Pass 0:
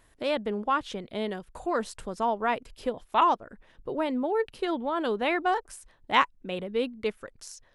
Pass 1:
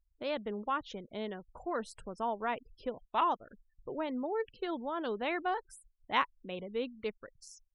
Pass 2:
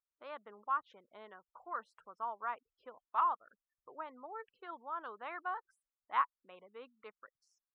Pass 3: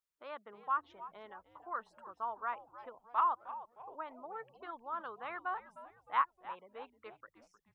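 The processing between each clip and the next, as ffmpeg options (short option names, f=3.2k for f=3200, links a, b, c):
-af "afftfilt=real='re*gte(hypot(re,im),0.00631)':imag='im*gte(hypot(re,im),0.00631)':win_size=1024:overlap=0.75,volume=-7.5dB"
-af "bandpass=f=1.2k:t=q:w=3.7:csg=0,volume=2.5dB"
-filter_complex "[0:a]asplit=5[a][b][c][d][e];[b]adelay=308,afreqshift=-120,volume=-14.5dB[f];[c]adelay=616,afreqshift=-240,volume=-22dB[g];[d]adelay=924,afreqshift=-360,volume=-29.6dB[h];[e]adelay=1232,afreqshift=-480,volume=-37.1dB[i];[a][f][g][h][i]amix=inputs=5:normalize=0,volume=1dB"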